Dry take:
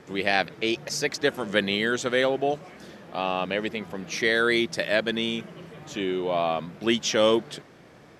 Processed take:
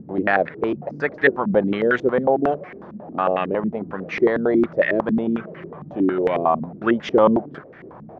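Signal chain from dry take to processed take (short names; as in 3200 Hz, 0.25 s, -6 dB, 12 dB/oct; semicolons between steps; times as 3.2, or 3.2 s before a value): upward compressor, threshold -40 dBFS; stepped low-pass 11 Hz 210–1900 Hz; gain +3 dB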